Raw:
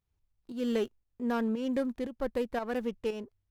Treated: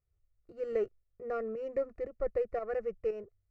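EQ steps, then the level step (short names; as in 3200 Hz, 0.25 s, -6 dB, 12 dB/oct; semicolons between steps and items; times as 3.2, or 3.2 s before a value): Butterworth band-stop 1600 Hz, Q 6.7; tape spacing loss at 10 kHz 28 dB; fixed phaser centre 920 Hz, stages 6; +2.5 dB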